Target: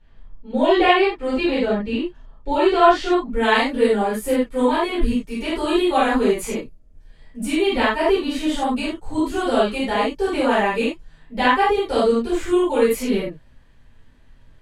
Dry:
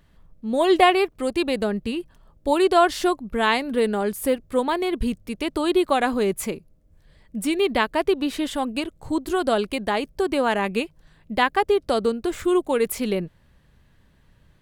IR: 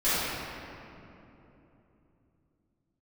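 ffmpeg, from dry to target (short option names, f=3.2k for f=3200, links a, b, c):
-filter_complex "[0:a]asetnsamples=n=441:p=0,asendcmd='3.33 lowpass f 12000',lowpass=4.5k[a];[1:a]atrim=start_sample=2205,afade=t=out:st=0.2:d=0.01,atrim=end_sample=9261,asetrate=61740,aresample=44100[b];[a][b]afir=irnorm=-1:irlink=0,volume=-6.5dB"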